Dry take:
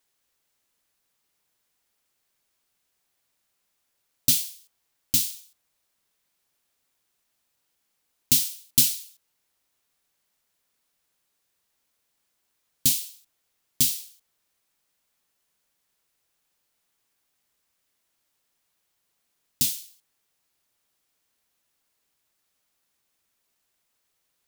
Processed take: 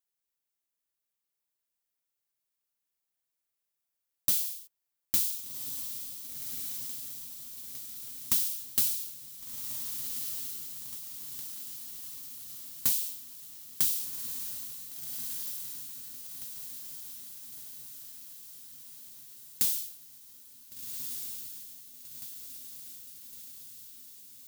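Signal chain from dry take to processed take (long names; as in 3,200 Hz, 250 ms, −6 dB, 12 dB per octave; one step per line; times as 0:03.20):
noise gate −52 dBFS, range −17 dB
high-shelf EQ 9,500 Hz +9.5 dB
downward compressor 6 to 1, threshold −20 dBFS, peak gain reduction 13 dB
soft clipping −17.5 dBFS, distortion −9 dB
on a send: feedback delay with all-pass diffusion 1,502 ms, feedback 62%, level −5.5 dB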